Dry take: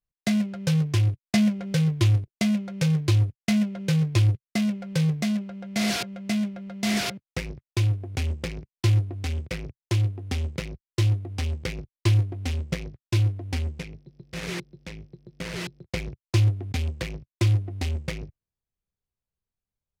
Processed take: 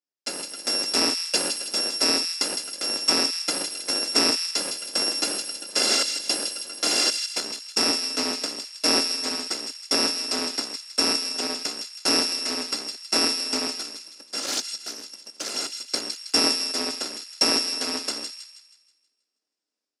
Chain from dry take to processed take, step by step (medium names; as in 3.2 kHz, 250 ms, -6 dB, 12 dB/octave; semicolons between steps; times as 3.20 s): bit-reversed sample order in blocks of 256 samples; peaking EQ 5 kHz +12 dB 0.31 oct; level rider gain up to 10 dB; in parallel at -8 dB: sample-rate reducer 1.1 kHz, jitter 0%; on the sum: elliptic band-pass 280–8300 Hz, stop band 70 dB; on a send: feedback echo behind a high-pass 160 ms, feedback 43%, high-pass 2.4 kHz, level -6 dB; 14.42–15.50 s: on the sum: loudspeaker Doppler distortion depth 0.22 ms; trim -3.5 dB